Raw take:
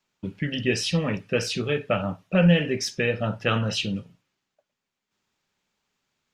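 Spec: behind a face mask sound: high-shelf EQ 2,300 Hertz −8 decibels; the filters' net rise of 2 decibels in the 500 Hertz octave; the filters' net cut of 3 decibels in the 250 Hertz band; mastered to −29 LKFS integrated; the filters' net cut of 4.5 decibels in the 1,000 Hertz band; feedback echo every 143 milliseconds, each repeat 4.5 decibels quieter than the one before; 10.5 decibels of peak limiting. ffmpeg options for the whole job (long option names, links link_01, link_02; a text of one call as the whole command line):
ffmpeg -i in.wav -af "equalizer=frequency=250:width_type=o:gain=-6,equalizer=frequency=500:width_type=o:gain=5.5,equalizer=frequency=1000:width_type=o:gain=-6.5,alimiter=limit=-17.5dB:level=0:latency=1,highshelf=frequency=2300:gain=-8,aecho=1:1:143|286|429|572|715|858|1001|1144|1287:0.596|0.357|0.214|0.129|0.0772|0.0463|0.0278|0.0167|0.01,volume=-1dB" out.wav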